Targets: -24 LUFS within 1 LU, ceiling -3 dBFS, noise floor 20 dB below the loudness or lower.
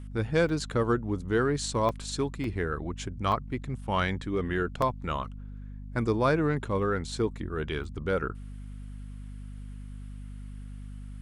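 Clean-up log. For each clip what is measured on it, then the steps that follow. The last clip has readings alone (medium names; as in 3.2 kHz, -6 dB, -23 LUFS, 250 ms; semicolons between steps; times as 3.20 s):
dropouts 6; longest dropout 2.5 ms; hum 50 Hz; highest harmonic 250 Hz; hum level -38 dBFS; loudness -29.5 LUFS; peak level -13.0 dBFS; loudness target -24.0 LUFS
-> interpolate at 0.49/1.89/2.44/3.32/4.82/7.84 s, 2.5 ms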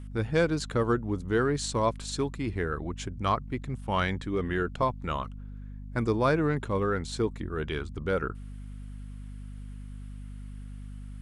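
dropouts 0; hum 50 Hz; highest harmonic 250 Hz; hum level -38 dBFS
-> de-hum 50 Hz, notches 5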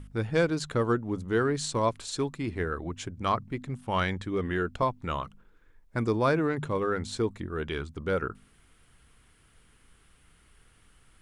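hum not found; loudness -30.0 LUFS; peak level -13.0 dBFS; loudness target -24.0 LUFS
-> trim +6 dB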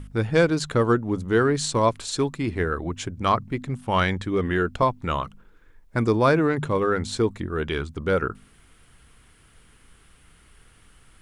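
loudness -24.0 LUFS; peak level -7.0 dBFS; noise floor -55 dBFS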